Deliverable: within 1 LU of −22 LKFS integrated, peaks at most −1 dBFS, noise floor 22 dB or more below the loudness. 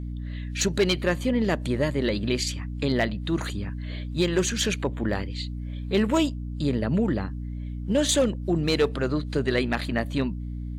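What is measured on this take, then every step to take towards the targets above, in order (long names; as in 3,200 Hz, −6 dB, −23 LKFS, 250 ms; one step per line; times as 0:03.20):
share of clipped samples 0.3%; peaks flattened at −14.5 dBFS; mains hum 60 Hz; hum harmonics up to 300 Hz; level of the hum −30 dBFS; integrated loudness −26.0 LKFS; sample peak −14.5 dBFS; target loudness −22.0 LKFS
→ clipped peaks rebuilt −14.5 dBFS
mains-hum notches 60/120/180/240/300 Hz
level +4 dB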